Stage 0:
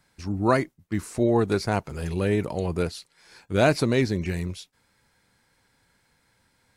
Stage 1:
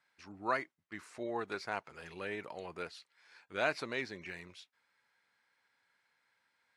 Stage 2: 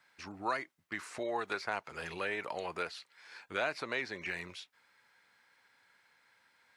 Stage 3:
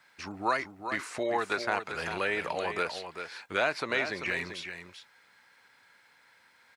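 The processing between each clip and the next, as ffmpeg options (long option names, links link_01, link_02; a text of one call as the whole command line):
ffmpeg -i in.wav -af "bandpass=frequency=1800:width_type=q:width=0.8:csg=0,volume=-6.5dB" out.wav
ffmpeg -i in.wav -filter_complex "[0:a]acrossover=split=500|2900[link_01][link_02][link_03];[link_01]acompressor=threshold=-55dB:ratio=4[link_04];[link_02]acompressor=threshold=-42dB:ratio=4[link_05];[link_03]acompressor=threshold=-56dB:ratio=4[link_06];[link_04][link_05][link_06]amix=inputs=3:normalize=0,volume=8.5dB" out.wav
ffmpeg -i in.wav -af "aecho=1:1:391:0.376,volume=6dB" out.wav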